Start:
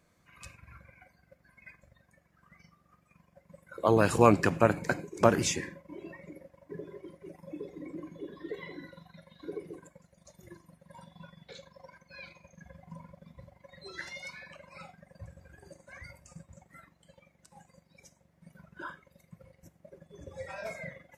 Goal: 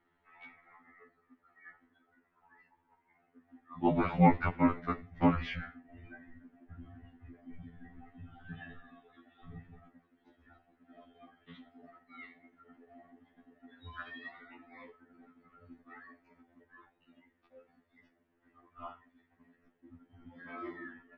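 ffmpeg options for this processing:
ffmpeg -i in.wav -af "highpass=frequency=370:width_type=q:width=0.5412,highpass=frequency=370:width_type=q:width=1.307,lowpass=frequency=3400:width_type=q:width=0.5176,lowpass=frequency=3400:width_type=q:width=0.7071,lowpass=frequency=3400:width_type=q:width=1.932,afreqshift=-300,afftfilt=real='re*2*eq(mod(b,4),0)':imag='im*2*eq(mod(b,4),0)':win_size=2048:overlap=0.75" out.wav

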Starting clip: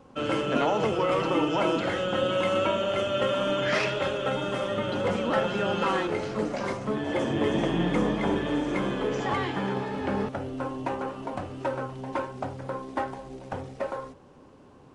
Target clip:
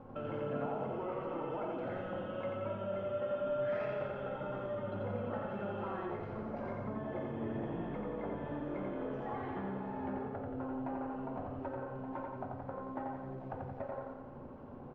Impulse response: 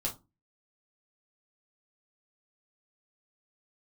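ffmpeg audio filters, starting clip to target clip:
-filter_complex "[0:a]lowpass=1300,bandreject=frequency=61.62:width_type=h:width=4,bandreject=frequency=123.24:width_type=h:width=4,bandreject=frequency=184.86:width_type=h:width=4,bandreject=frequency=246.48:width_type=h:width=4,bandreject=frequency=308.1:width_type=h:width=4,bandreject=frequency=369.72:width_type=h:width=4,bandreject=frequency=431.34:width_type=h:width=4,bandreject=frequency=492.96:width_type=h:width=4,bandreject=frequency=554.58:width_type=h:width=4,bandreject=frequency=616.2:width_type=h:width=4,bandreject=frequency=677.82:width_type=h:width=4,bandreject=frequency=739.44:width_type=h:width=4,bandreject=frequency=801.06:width_type=h:width=4,bandreject=frequency=862.68:width_type=h:width=4,bandreject=frequency=924.3:width_type=h:width=4,bandreject=frequency=985.92:width_type=h:width=4,bandreject=frequency=1047.54:width_type=h:width=4,bandreject=frequency=1109.16:width_type=h:width=4,bandreject=frequency=1170.78:width_type=h:width=4,bandreject=frequency=1232.4:width_type=h:width=4,bandreject=frequency=1294.02:width_type=h:width=4,bandreject=frequency=1355.64:width_type=h:width=4,bandreject=frequency=1417.26:width_type=h:width=4,bandreject=frequency=1478.88:width_type=h:width=4,bandreject=frequency=1540.5:width_type=h:width=4,bandreject=frequency=1602.12:width_type=h:width=4,bandreject=frequency=1663.74:width_type=h:width=4,bandreject=frequency=1725.36:width_type=h:width=4,bandreject=frequency=1786.98:width_type=h:width=4,bandreject=frequency=1848.6:width_type=h:width=4,bandreject=frequency=1910.22:width_type=h:width=4,bandreject=frequency=1971.84:width_type=h:width=4,bandreject=frequency=2033.46:width_type=h:width=4,bandreject=frequency=2095.08:width_type=h:width=4,bandreject=frequency=2156.7:width_type=h:width=4,asplit=2[link_01][link_02];[1:a]atrim=start_sample=2205[link_03];[link_02][link_03]afir=irnorm=-1:irlink=0,volume=-9.5dB[link_04];[link_01][link_04]amix=inputs=2:normalize=0,acompressor=threshold=-44dB:ratio=3,aecho=1:1:88|176|264|352|440|528|616|704:0.668|0.381|0.217|0.124|0.0706|0.0402|0.0229|0.0131"

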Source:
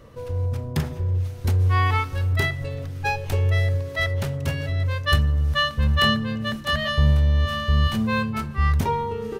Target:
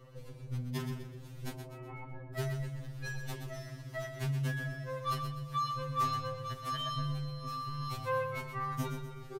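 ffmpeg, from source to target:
ffmpeg -i in.wav -filter_complex "[0:a]asettb=1/sr,asplit=3[link_01][link_02][link_03];[link_01]atrim=end=1.544[link_04];[link_02]atrim=start=1.54:end=2.35,asetpts=PTS-STARTPTS,afade=type=in:duration=0.004:curve=qsin,afade=type=out:start_time=0.806:duration=0.004:curve=qsin,lowpass=frequency=690:width_type=q:width=1.7[link_05];[link_03]atrim=start=2.346[link_06];[link_04][link_05]acrossfade=duration=0.004:curve1=hsin:curve2=qsin[link_07];[link_07][link_06]acrossfade=duration=0.004:curve1=qsin:curve2=hsin,asoftclip=type=tanh:threshold=-10dB,aecho=1:1:125|250|375|500|625:0.398|0.163|0.0669|0.0274|0.0112,afftfilt=real='re*2.45*eq(mod(b,6),0)':imag='im*2.45*eq(mod(b,6),0)':win_size=2048:overlap=0.75,volume=-7dB" out.wav

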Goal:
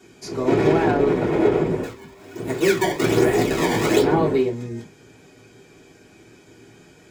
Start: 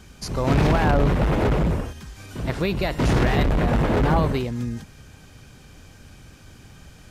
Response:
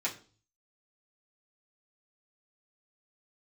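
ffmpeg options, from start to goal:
-filter_complex "[0:a]equalizer=frequency=400:width_type=o:width=0.68:gain=13.5,asettb=1/sr,asplit=3[link_01][link_02][link_03];[link_01]atrim=end=1.834[link_04];[link_02]atrim=start=1.83:end=4.02,asetpts=PTS-STARTPTS,afade=type=in:duration=0.004:curve=qsin,afade=type=out:start_time=2.186:duration=0.004:curve=qsin,acrusher=samples=19:mix=1:aa=0.000001:lfo=1:lforange=30.4:lforate=1.2[link_05];[link_03]atrim=start=4.016[link_06];[link_04][link_05]acrossfade=duration=0.004:curve1=hsin:curve2=qsin[link_07];[link_07][link_06]acrossfade=duration=0.004:curve1=qsin:curve2=hsin[link_08];[1:a]atrim=start_sample=2205,atrim=end_sample=3087[link_09];[link_08][link_09]afir=irnorm=-1:irlink=0,volume=-6.5dB"

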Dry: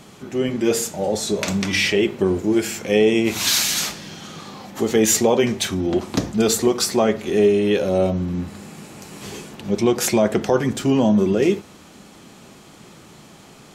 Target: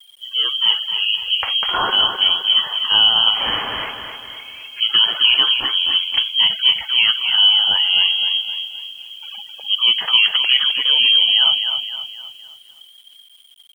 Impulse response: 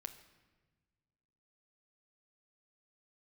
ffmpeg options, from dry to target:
-filter_complex "[0:a]lowpass=frequency=2900:width_type=q:width=0.5098,lowpass=frequency=2900:width_type=q:width=0.6013,lowpass=frequency=2900:width_type=q:width=0.9,lowpass=frequency=2900:width_type=q:width=2.563,afreqshift=-3400,afftfilt=real='re*gte(hypot(re,im),0.0282)':imag='im*gte(hypot(re,im),0.0282)':win_size=1024:overlap=0.75,asplit=2[link_01][link_02];[link_02]aecho=0:1:259|518|777|1036|1295:0.447|0.201|0.0905|0.0407|0.0183[link_03];[link_01][link_03]amix=inputs=2:normalize=0,acrusher=bits=8:mix=0:aa=0.000001,volume=2dB"

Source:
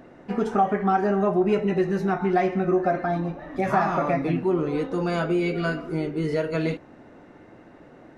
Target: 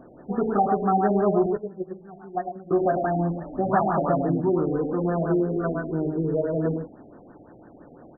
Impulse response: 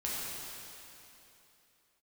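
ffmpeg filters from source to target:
-filter_complex "[0:a]asettb=1/sr,asplit=3[link_01][link_02][link_03];[link_01]atrim=end=1.464[link_04];[link_02]atrim=start=1.46:end=2.71,asetpts=PTS-STARTPTS,afade=type=in:duration=0.004:curve=qsin,afade=type=out:start_time=1.246:duration=0.004:curve=qsin,agate=range=-19dB:threshold=-18dB:ratio=16:detection=peak[link_05];[link_03]atrim=start=2.706[link_06];[link_04][link_05]acrossfade=duration=0.004:curve1=hsin:curve2=qsin[link_07];[link_07][link_06]acrossfade=duration=0.004:curve1=qsin:curve2=hsin,acrossover=split=3100[link_08][link_09];[link_08]aecho=1:1:105:0.531[link_10];[link_10][link_09]amix=inputs=2:normalize=0,afftfilt=real='re*lt(b*sr/1024,770*pow(1900/770,0.5+0.5*sin(2*PI*5.9*pts/sr)))':imag='im*lt(b*sr/1024,770*pow(1900/770,0.5+0.5*sin(2*PI*5.9*pts/sr)))':win_size=1024:overlap=0.75"

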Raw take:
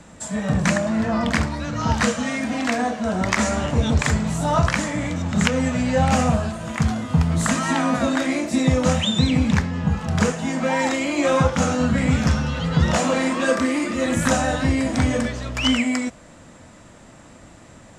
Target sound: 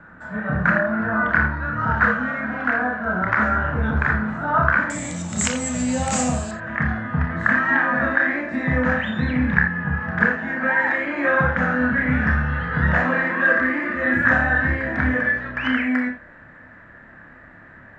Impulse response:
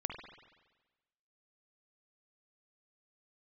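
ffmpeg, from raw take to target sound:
-filter_complex "[0:a]asetnsamples=nb_out_samples=441:pad=0,asendcmd='4.9 lowpass f 7700;6.51 lowpass f 1700',lowpass=frequency=1500:width_type=q:width=8.3[link_01];[1:a]atrim=start_sample=2205,afade=type=out:start_time=0.21:duration=0.01,atrim=end_sample=9702,asetrate=74970,aresample=44100[link_02];[link_01][link_02]afir=irnorm=-1:irlink=0"

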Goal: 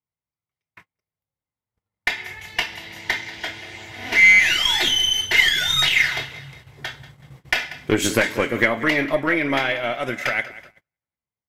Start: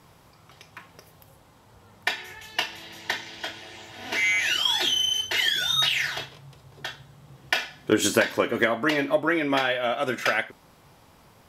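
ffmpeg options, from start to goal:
ffmpeg -i in.wav -filter_complex "[0:a]dynaudnorm=framelen=250:gausssize=13:maxgain=12dB,equalizer=frequency=71:width_type=o:width=2.5:gain=6,asplit=2[link_01][link_02];[link_02]aecho=0:1:188|376|564|752:0.141|0.0593|0.0249|0.0105[link_03];[link_01][link_03]amix=inputs=2:normalize=0,aeval=exprs='(tanh(1.78*val(0)+0.4)-tanh(0.4))/1.78':channel_layout=same,equalizer=frequency=2100:width_type=o:width=0.25:gain=10.5,agate=range=-39dB:threshold=-40dB:ratio=16:detection=peak,volume=-3.5dB" out.wav

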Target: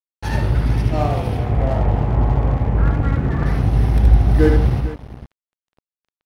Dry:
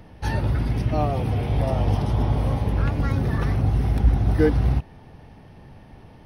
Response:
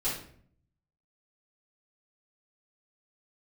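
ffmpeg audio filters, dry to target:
-filter_complex "[0:a]asettb=1/sr,asplit=3[link_01][link_02][link_03];[link_01]atrim=end=1.374[link_04];[link_02]atrim=start=1.37:end=3.46,asetpts=PTS-STARTPTS,afade=type=in:duration=0.004:curve=qsin,afade=type=out:start_time=2.086:duration=0.004:curve=qsin,lowpass=frequency=2100:width=0.5412,lowpass=frequency=2100:width=1.3066[link_05];[link_03]atrim=start=3.456[link_06];[link_04][link_05]acrossfade=duration=0.004:curve1=hsin:curve2=qsin[link_07];[link_07][link_06]acrossfade=duration=0.004:curve1=qsin:curve2=hsin,aecho=1:1:58|74|92|161|457:0.224|0.631|0.178|0.188|0.224,aeval=exprs='sgn(val(0))*max(abs(val(0))-0.02,0)':channel_layout=same,volume=3dB"

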